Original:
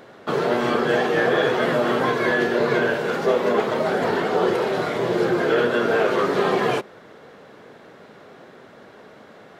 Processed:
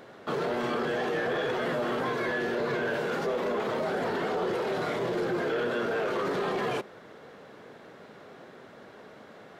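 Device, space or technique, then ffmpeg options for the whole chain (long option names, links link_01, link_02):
soft clipper into limiter: -af "asoftclip=type=tanh:threshold=-12dB,alimiter=limit=-19.5dB:level=0:latency=1:release=24,volume=-3.5dB"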